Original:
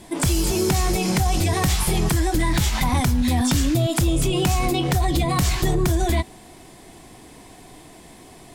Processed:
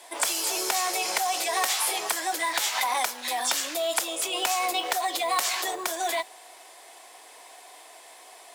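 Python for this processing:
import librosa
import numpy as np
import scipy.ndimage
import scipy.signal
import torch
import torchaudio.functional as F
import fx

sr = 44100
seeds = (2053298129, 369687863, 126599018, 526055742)

y = scipy.signal.sosfilt(scipy.signal.butter(4, 560.0, 'highpass', fs=sr, output='sos'), x)
y = fx.mod_noise(y, sr, seeds[0], snr_db=25)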